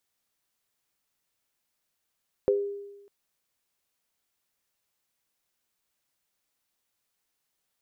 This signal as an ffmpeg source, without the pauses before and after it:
-f lavfi -i "aevalsrc='0.106*pow(10,-3*t/1.07)*sin(2*PI*403*t)+0.106*pow(10,-3*t/0.26)*sin(2*PI*506*t)':d=0.6:s=44100"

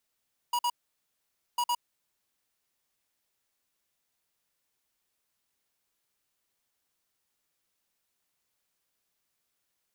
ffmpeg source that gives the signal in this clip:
-f lavfi -i "aevalsrc='0.0422*(2*lt(mod(964*t,1),0.5)-1)*clip(min(mod(mod(t,1.05),0.11),0.06-mod(mod(t,1.05),0.11))/0.005,0,1)*lt(mod(t,1.05),0.22)':d=2.1:s=44100"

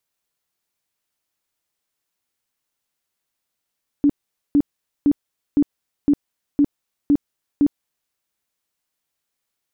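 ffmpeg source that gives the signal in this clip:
-f lavfi -i "aevalsrc='0.282*sin(2*PI*288*mod(t,0.51))*lt(mod(t,0.51),16/288)':d=4.08:s=44100"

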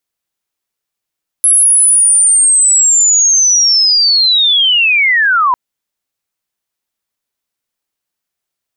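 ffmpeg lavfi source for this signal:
-f lavfi -i "aevalsrc='pow(10,(-5-2.5*t/4.1)/20)*sin(2*PI*(11000*t-10040*t*t/(2*4.1)))':d=4.1:s=44100"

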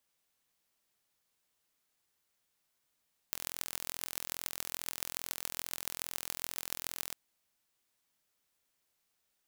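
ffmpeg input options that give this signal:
-f lavfi -i "aevalsrc='0.473*eq(mod(n,1040),0)*(0.5+0.5*eq(mod(n,6240),0))':d=3.8:s=44100"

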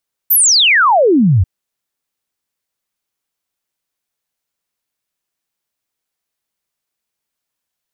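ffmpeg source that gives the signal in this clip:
-f lavfi -i "aevalsrc='0.447*clip(min(t,1.14-t)/0.01,0,1)*sin(2*PI*15000*1.14/log(82/15000)*(exp(log(82/15000)*t/1.14)-1))':d=1.14:s=44100"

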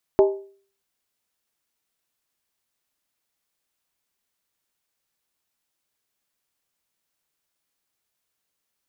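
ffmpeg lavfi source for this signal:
-f lavfi -i "aevalsrc='0.335*pow(10,-3*t/0.46)*sin(2*PI*393*t)+0.15*pow(10,-3*t/0.364)*sin(2*PI*626.4*t)+0.0668*pow(10,-3*t/0.315)*sin(2*PI*839.4*t)+0.0299*pow(10,-3*t/0.304)*sin(2*PI*902.3*t)+0.0133*pow(10,-3*t/0.282)*sin(2*PI*1042.6*t)':d=0.63:s=44100"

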